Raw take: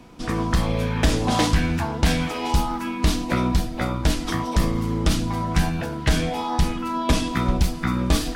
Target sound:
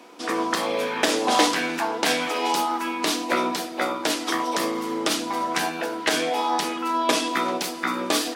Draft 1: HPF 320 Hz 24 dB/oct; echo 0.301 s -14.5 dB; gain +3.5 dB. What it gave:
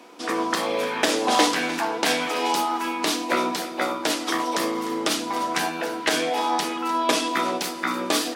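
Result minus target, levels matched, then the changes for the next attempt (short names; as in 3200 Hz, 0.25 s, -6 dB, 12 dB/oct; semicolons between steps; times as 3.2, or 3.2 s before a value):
echo-to-direct +9 dB
change: echo 0.301 s -23.5 dB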